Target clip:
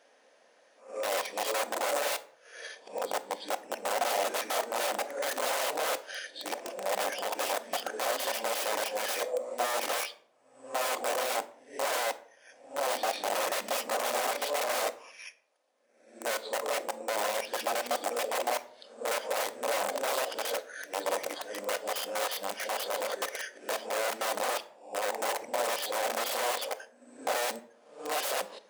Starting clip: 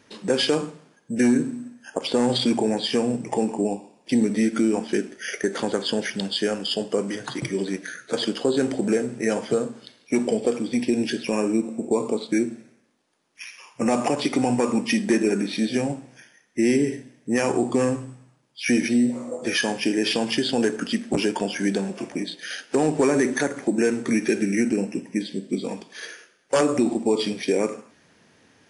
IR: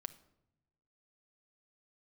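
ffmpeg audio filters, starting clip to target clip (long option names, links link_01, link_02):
-filter_complex "[0:a]areverse,aeval=exprs='(mod(10.6*val(0)+1,2)-1)/10.6':channel_layout=same,highpass=frequency=590:width_type=q:width=3.9[link_01];[1:a]atrim=start_sample=2205,asetrate=66150,aresample=44100[link_02];[link_01][link_02]afir=irnorm=-1:irlink=0"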